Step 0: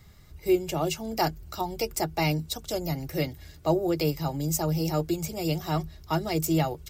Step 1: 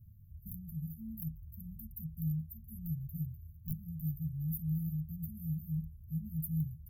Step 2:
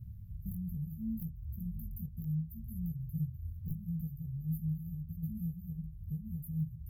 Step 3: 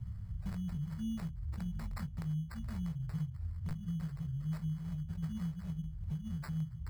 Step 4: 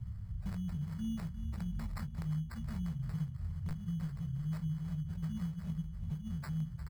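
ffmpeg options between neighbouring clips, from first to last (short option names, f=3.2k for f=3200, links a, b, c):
-af "aeval=exprs='(mod(4.73*val(0)+1,2)-1)/4.73':c=same,equalizer=f=100:t=o:w=0.67:g=11,equalizer=f=400:t=o:w=0.67:g=-8,equalizer=f=2.5k:t=o:w=0.67:g=4,equalizer=f=6.3k:t=o:w=0.67:g=5,afftfilt=real='re*(1-between(b*sr/4096,230,11000))':imag='im*(1-between(b*sr/4096,230,11000))':win_size=4096:overlap=0.75,volume=-8dB"
-af "acompressor=threshold=-47dB:ratio=3,flanger=delay=16:depth=6.1:speed=0.71,highshelf=f=6.3k:g=-11,volume=13.5dB"
-filter_complex "[0:a]acompressor=threshold=-42dB:ratio=2.5,acrossover=split=210[a][b];[b]acrusher=samples=14:mix=1:aa=0.000001[c];[a][c]amix=inputs=2:normalize=0,volume=5dB"
-af "aecho=1:1:353|706|1059|1412|1765|2118:0.251|0.143|0.0816|0.0465|0.0265|0.0151"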